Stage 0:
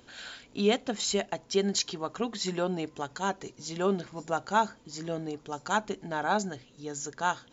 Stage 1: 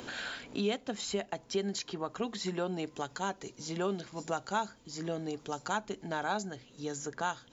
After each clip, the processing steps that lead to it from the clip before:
multiband upward and downward compressor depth 70%
level −5 dB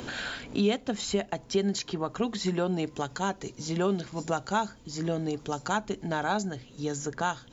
low-shelf EQ 180 Hz +9 dB
level +4 dB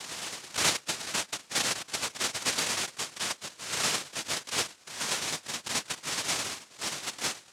shaped tremolo saw down 9.4 Hz, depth 55%
cochlear-implant simulation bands 1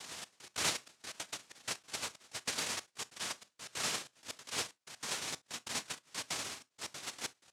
gate pattern "xxx..x.x" 188 BPM −24 dB
convolution reverb, pre-delay 6 ms, DRR 16.5 dB
level −7.5 dB

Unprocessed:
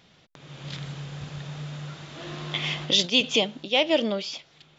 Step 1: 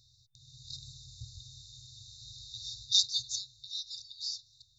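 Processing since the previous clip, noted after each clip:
brick-wall band-stop 130–3,600 Hz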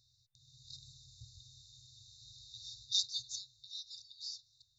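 low-shelf EQ 72 Hz −5 dB
level −7 dB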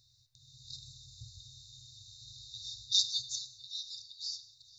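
feedback echo with a high-pass in the loop 445 ms, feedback 63%, level −23 dB
reverb whose tail is shaped and stops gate 250 ms falling, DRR 10.5 dB
level +4.5 dB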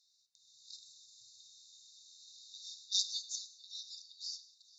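resonant band-pass 6,600 Hz, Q 1.1
level −1.5 dB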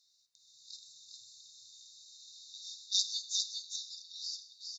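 single-tap delay 406 ms −4 dB
level +2 dB

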